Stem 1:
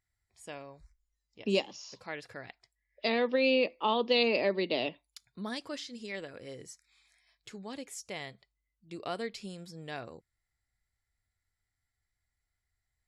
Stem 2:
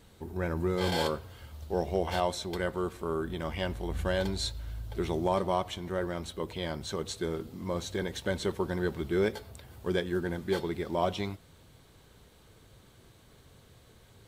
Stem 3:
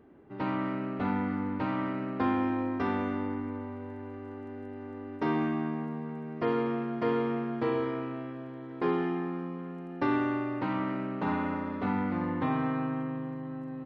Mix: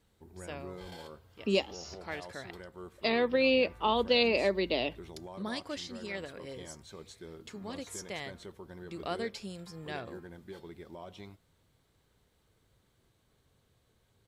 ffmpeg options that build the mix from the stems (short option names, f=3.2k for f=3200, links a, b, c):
-filter_complex "[0:a]volume=0.5dB,asplit=2[a][b];[1:a]alimiter=limit=-22dB:level=0:latency=1:release=146,volume=-13.5dB[c];[2:a]acompressor=threshold=-34dB:ratio=6,highpass=1k,adelay=850,volume=-15dB[d];[b]apad=whole_len=648273[e];[d][e]sidechaingate=range=-33dB:threshold=-57dB:ratio=16:detection=peak[f];[a][c][f]amix=inputs=3:normalize=0"